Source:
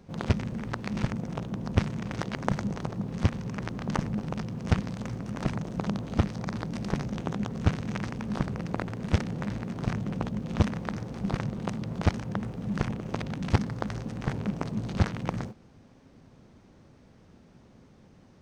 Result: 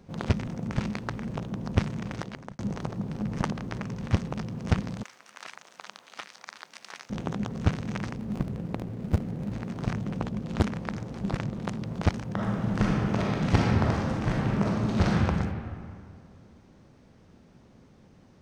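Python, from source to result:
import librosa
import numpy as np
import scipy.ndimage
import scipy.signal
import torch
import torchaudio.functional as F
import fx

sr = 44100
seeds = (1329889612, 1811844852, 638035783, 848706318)

y = fx.highpass(x, sr, hz=1400.0, slope=12, at=(5.03, 7.1))
y = fx.median_filter(y, sr, points=41, at=(8.16, 9.53))
y = fx.doppler_dist(y, sr, depth_ms=0.96, at=(10.23, 11.81))
y = fx.reverb_throw(y, sr, start_s=12.34, length_s=2.86, rt60_s=2.2, drr_db=-4.5)
y = fx.edit(y, sr, fx.reverse_span(start_s=0.47, length_s=0.89),
    fx.fade_out_span(start_s=2.06, length_s=0.53),
    fx.reverse_span(start_s=3.09, length_s=1.22), tone=tone)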